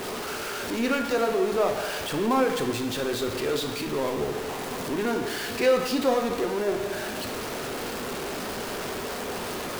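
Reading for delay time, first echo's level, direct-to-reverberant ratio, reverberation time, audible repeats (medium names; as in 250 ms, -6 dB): no echo, no echo, 3.5 dB, 1.4 s, no echo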